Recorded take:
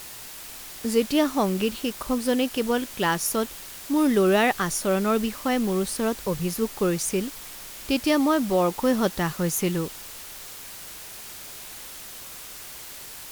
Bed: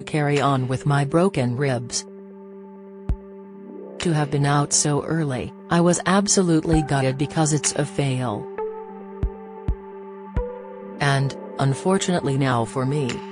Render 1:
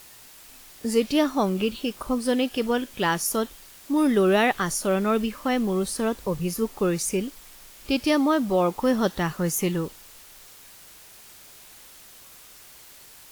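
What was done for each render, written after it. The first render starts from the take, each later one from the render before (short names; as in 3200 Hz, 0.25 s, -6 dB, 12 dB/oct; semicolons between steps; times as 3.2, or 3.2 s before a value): noise print and reduce 8 dB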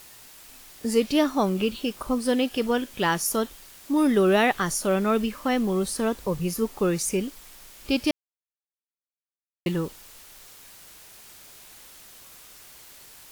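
8.11–9.66 mute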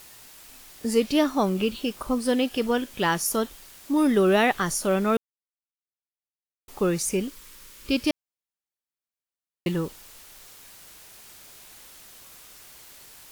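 5.17–6.68 mute; 7.28–8.05 Butterworth band-stop 720 Hz, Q 2.4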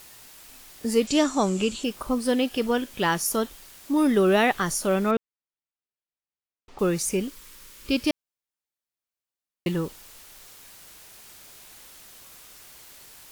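1.07–1.84 synth low-pass 7400 Hz, resonance Q 7.8; 5.11–6.79 air absorption 150 m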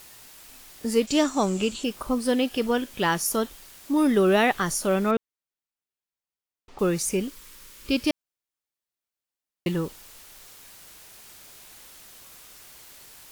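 0.85–1.75 G.711 law mismatch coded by A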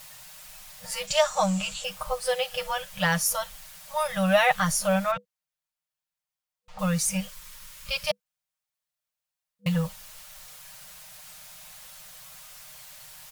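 FFT band-reject 200–490 Hz; comb 6.5 ms, depth 67%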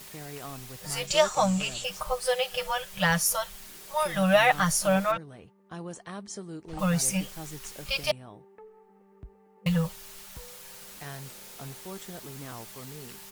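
add bed -22 dB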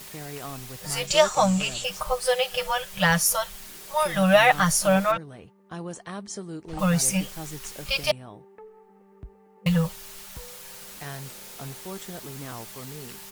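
gain +3.5 dB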